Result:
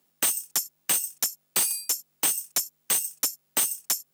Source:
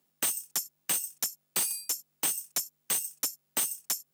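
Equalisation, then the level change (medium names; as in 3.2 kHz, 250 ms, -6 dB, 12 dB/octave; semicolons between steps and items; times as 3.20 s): bass shelf 120 Hz -7.5 dB; +5.0 dB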